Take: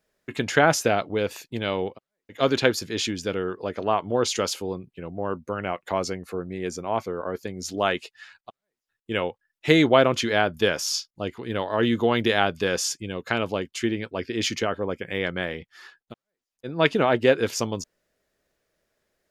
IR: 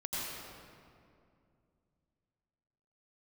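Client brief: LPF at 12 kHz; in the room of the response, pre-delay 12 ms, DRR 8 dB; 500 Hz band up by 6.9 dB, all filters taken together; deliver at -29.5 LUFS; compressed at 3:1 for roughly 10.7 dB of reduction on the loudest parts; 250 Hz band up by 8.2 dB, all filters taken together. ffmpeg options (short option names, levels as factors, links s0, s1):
-filter_complex "[0:a]lowpass=12000,equalizer=f=250:t=o:g=8.5,equalizer=f=500:t=o:g=6,acompressor=threshold=0.0891:ratio=3,asplit=2[s0][s1];[1:a]atrim=start_sample=2205,adelay=12[s2];[s1][s2]afir=irnorm=-1:irlink=0,volume=0.251[s3];[s0][s3]amix=inputs=2:normalize=0,volume=0.631"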